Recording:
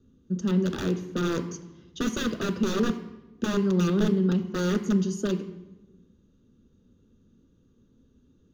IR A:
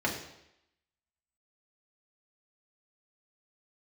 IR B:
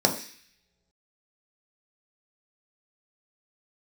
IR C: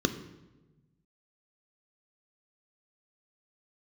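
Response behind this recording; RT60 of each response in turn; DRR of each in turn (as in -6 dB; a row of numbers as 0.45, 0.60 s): C; 0.80 s, not exponential, 1.1 s; -3.0, 1.5, 8.5 dB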